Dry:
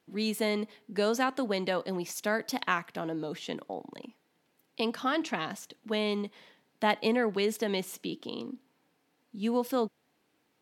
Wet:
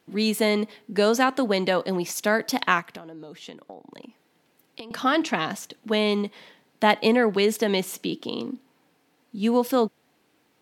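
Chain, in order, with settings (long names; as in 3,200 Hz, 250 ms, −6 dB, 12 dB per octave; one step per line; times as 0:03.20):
0:02.80–0:04.91: downward compressor 20 to 1, threshold −45 dBFS, peak gain reduction 21 dB
level +7.5 dB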